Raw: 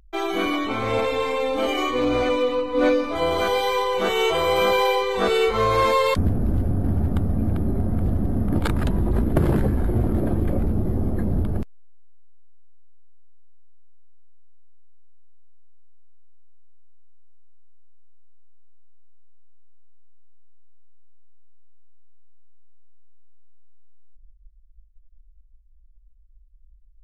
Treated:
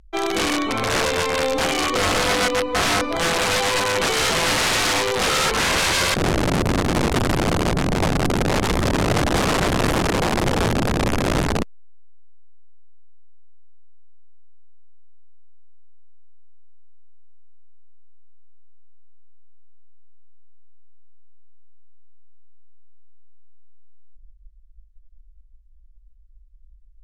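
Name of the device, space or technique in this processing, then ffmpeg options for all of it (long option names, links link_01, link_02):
overflowing digital effects unit: -af "aeval=exprs='(mod(7.08*val(0)+1,2)-1)/7.08':channel_layout=same,lowpass=9200,volume=2.5dB"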